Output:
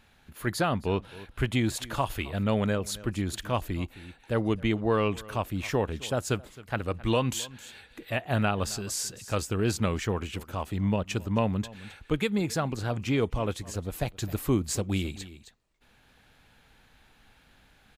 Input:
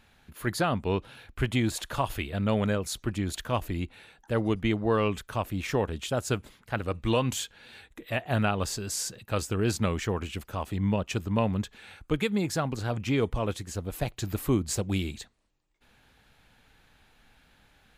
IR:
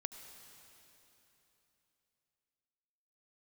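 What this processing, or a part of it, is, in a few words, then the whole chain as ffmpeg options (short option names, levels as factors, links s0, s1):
ducked delay: -filter_complex "[0:a]asplit=3[s0][s1][s2];[s1]adelay=265,volume=0.562[s3];[s2]apad=whole_len=804168[s4];[s3][s4]sidechaincompress=threshold=0.00631:ratio=4:attack=6.1:release=505[s5];[s0][s5]amix=inputs=2:normalize=0"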